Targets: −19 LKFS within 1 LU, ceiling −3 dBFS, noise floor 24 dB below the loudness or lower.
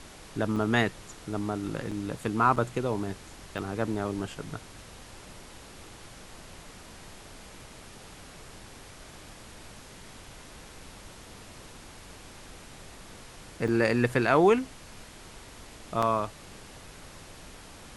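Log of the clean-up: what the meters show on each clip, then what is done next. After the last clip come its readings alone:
number of dropouts 6; longest dropout 5.3 ms; background noise floor −49 dBFS; target noise floor −53 dBFS; integrated loudness −28.5 LKFS; sample peak −8.5 dBFS; target loudness −19.0 LKFS
→ repair the gap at 0:00.56/0:01.91/0:02.56/0:03.58/0:13.68/0:16.02, 5.3 ms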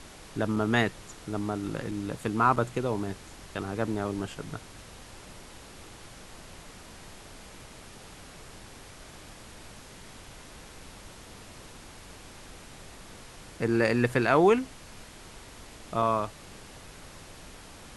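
number of dropouts 0; background noise floor −49 dBFS; target noise floor −53 dBFS
→ noise reduction from a noise print 6 dB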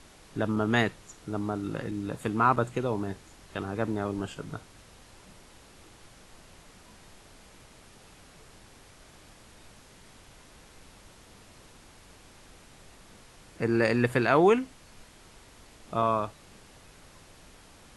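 background noise floor −55 dBFS; integrated loudness −28.5 LKFS; sample peak −8.5 dBFS; target loudness −19.0 LKFS
→ level +9.5 dB
brickwall limiter −3 dBFS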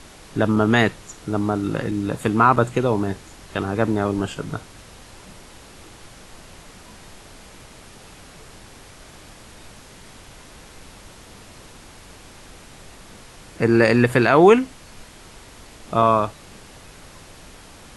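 integrated loudness −19.5 LKFS; sample peak −3.0 dBFS; background noise floor −45 dBFS

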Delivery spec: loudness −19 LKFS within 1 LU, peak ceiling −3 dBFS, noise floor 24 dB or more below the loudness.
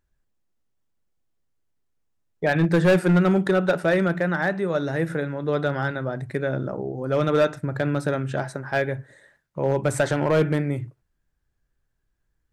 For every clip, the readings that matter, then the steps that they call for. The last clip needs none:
share of clipped samples 0.9%; peaks flattened at −13.0 dBFS; integrated loudness −23.5 LKFS; sample peak −13.0 dBFS; target loudness −19.0 LKFS
→ clipped peaks rebuilt −13 dBFS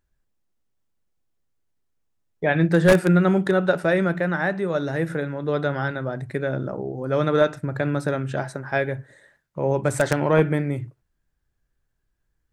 share of clipped samples 0.0%; integrated loudness −22.5 LKFS; sample peak −4.0 dBFS; target loudness −19.0 LKFS
→ level +3.5 dB
brickwall limiter −3 dBFS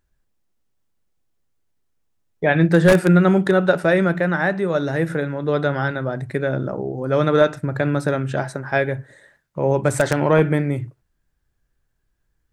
integrated loudness −19.5 LKFS; sample peak −3.0 dBFS; background noise floor −71 dBFS

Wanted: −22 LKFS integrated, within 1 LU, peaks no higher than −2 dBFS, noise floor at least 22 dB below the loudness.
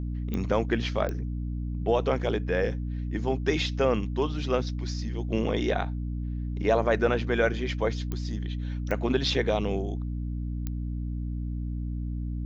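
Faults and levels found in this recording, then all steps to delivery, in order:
number of clicks 5; mains hum 60 Hz; hum harmonics up to 300 Hz; level of the hum −29 dBFS; integrated loudness −29.0 LKFS; sample peak −10.5 dBFS; target loudness −22.0 LKFS
→ click removal
hum removal 60 Hz, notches 5
level +7 dB

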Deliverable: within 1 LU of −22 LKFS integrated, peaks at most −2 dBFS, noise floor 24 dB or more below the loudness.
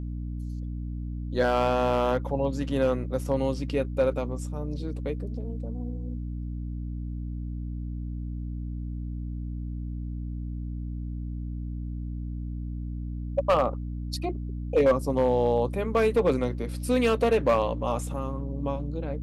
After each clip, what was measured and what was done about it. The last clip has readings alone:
share of clipped samples 0.4%; peaks flattened at −15.0 dBFS; mains hum 60 Hz; hum harmonics up to 300 Hz; level of the hum −31 dBFS; integrated loudness −29.0 LKFS; sample peak −15.0 dBFS; target loudness −22.0 LKFS
→ clipped peaks rebuilt −15 dBFS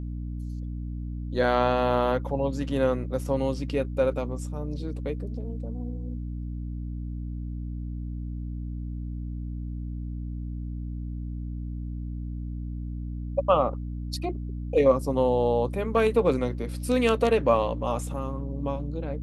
share of clipped samples 0.0%; mains hum 60 Hz; hum harmonics up to 300 Hz; level of the hum −30 dBFS
→ hum removal 60 Hz, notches 5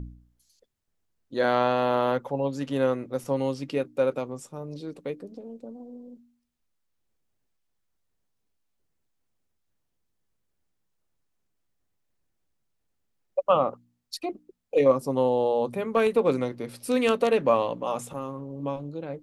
mains hum none found; integrated loudness −26.5 LKFS; sample peak −7.0 dBFS; target loudness −22.0 LKFS
→ level +4.5 dB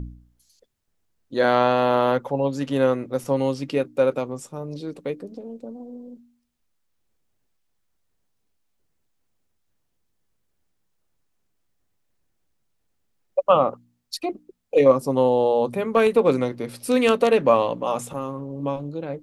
integrated loudness −22.0 LKFS; sample peak −2.5 dBFS; background noise floor −72 dBFS

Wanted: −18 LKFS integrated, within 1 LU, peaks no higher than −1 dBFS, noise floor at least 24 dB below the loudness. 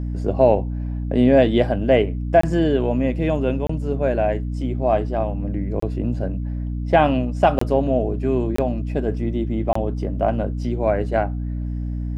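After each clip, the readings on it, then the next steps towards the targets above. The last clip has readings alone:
number of dropouts 6; longest dropout 24 ms; mains hum 60 Hz; hum harmonics up to 300 Hz; level of the hum −23 dBFS; integrated loudness −21.0 LKFS; sample peak −2.5 dBFS; target loudness −18.0 LKFS
→ repair the gap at 0:02.41/0:03.67/0:05.80/0:07.59/0:08.56/0:09.73, 24 ms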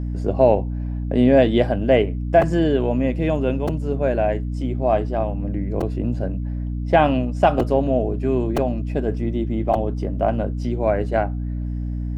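number of dropouts 0; mains hum 60 Hz; hum harmonics up to 300 Hz; level of the hum −23 dBFS
→ mains-hum notches 60/120/180/240/300 Hz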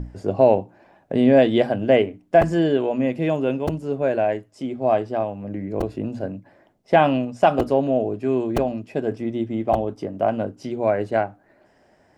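mains hum none found; integrated loudness −21.5 LKFS; sample peak −3.0 dBFS; target loudness −18.0 LKFS
→ level +3.5 dB
brickwall limiter −1 dBFS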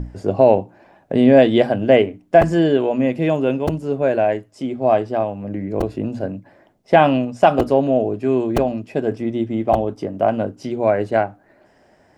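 integrated loudness −18.0 LKFS; sample peak −1.0 dBFS; background noise floor −55 dBFS

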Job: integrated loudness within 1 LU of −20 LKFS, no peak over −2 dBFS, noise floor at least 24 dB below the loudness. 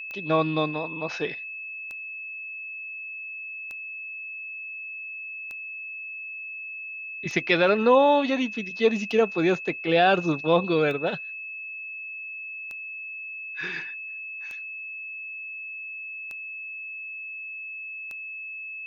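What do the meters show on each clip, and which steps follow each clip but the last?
number of clicks 11; interfering tone 2,600 Hz; level of the tone −34 dBFS; integrated loudness −27.5 LKFS; sample peak −7.5 dBFS; target loudness −20.0 LKFS
→ click removal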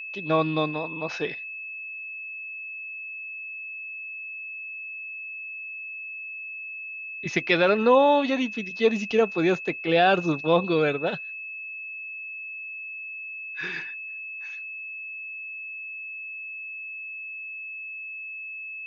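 number of clicks 0; interfering tone 2,600 Hz; level of the tone −34 dBFS
→ notch filter 2,600 Hz, Q 30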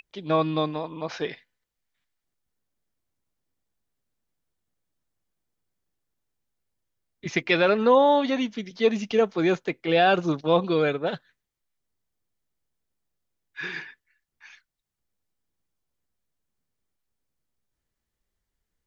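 interfering tone none found; integrated loudness −24.0 LKFS; sample peak −7.5 dBFS; target loudness −20.0 LKFS
→ level +4 dB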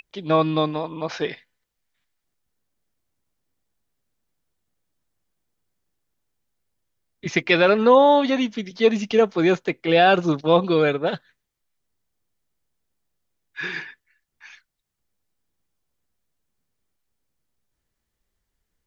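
integrated loudness −20.0 LKFS; sample peak −4.0 dBFS; background noise floor −79 dBFS

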